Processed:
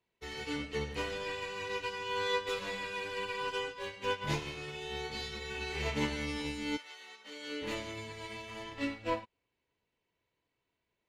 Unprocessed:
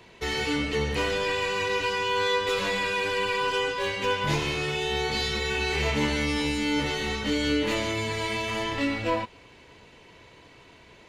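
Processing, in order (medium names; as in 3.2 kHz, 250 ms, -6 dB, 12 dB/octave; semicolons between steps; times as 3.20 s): 6.76–7.61 s: high-pass 1.1 kHz -> 350 Hz 12 dB/octave; upward expansion 2.5:1, over -41 dBFS; trim -5.5 dB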